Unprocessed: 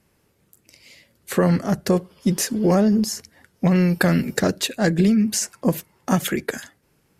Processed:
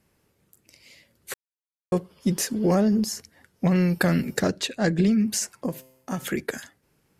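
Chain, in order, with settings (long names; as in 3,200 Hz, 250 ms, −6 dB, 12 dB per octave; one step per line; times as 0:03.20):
0:01.34–0:01.92: silence
0:04.48–0:05.12: low-pass filter 7,600 Hz 12 dB per octave
0:05.66–0:06.27: tuned comb filter 130 Hz, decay 0.8 s, harmonics all, mix 60%
level −3.5 dB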